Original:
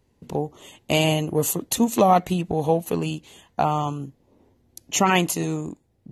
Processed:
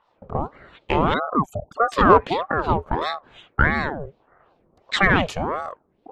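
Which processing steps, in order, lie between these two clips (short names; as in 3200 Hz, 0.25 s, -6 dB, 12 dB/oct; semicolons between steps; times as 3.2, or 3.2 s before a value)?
1.14–1.92 formant sharpening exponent 3; LFO low-pass sine 2.7 Hz 910–3600 Hz; in parallel at -5 dB: soft clip -9.5 dBFS, distortion -13 dB; on the sum: ring modulator with a swept carrier 620 Hz, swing 60%, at 1.6 Hz; gain -1 dB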